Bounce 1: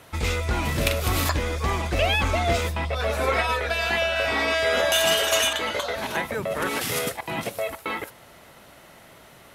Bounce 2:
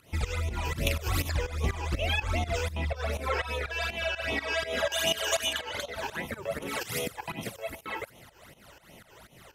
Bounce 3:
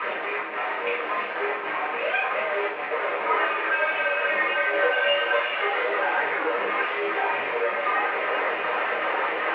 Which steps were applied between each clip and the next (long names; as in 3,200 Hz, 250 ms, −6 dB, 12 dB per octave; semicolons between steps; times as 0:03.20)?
in parallel at −1.5 dB: downward compressor, threshold −32 dBFS, peak gain reduction 14 dB; on the sum: all-pass phaser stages 12, 2.6 Hz, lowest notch 200–1,600 Hz; fake sidechain pumping 123 BPM, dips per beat 2, −16 dB, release 196 ms; level −4.5 dB
linear delta modulator 64 kbit/s, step −22.5 dBFS; convolution reverb, pre-delay 3 ms, DRR −6.5 dB; single-sideband voice off tune −81 Hz 520–2,500 Hz